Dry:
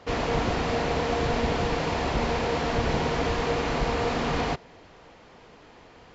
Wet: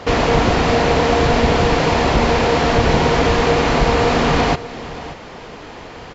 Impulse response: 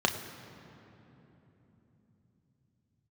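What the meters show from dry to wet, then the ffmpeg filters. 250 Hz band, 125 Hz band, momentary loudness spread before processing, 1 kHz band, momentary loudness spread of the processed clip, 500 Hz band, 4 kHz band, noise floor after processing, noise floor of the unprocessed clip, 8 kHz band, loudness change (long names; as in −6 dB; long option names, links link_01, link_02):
+11.0 dB, +11.0 dB, 1 LU, +11.5 dB, 20 LU, +11.5 dB, +11.5 dB, −35 dBFS, −52 dBFS, can't be measured, +11.0 dB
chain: -filter_complex "[0:a]asplit=2[link_01][link_02];[link_02]acompressor=threshold=-36dB:ratio=6,volume=3dB[link_03];[link_01][link_03]amix=inputs=2:normalize=0,aecho=1:1:581:0.158,volume=8.5dB"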